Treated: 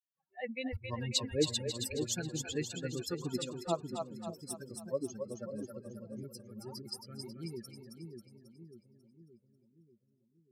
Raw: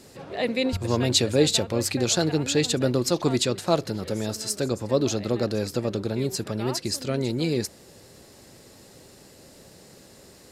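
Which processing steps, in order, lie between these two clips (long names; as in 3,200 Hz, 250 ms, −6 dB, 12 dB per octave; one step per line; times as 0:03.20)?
spectral dynamics exaggerated over time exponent 3
echo with a time of its own for lows and highs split 450 Hz, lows 587 ms, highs 271 ms, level −5 dB
level −7.5 dB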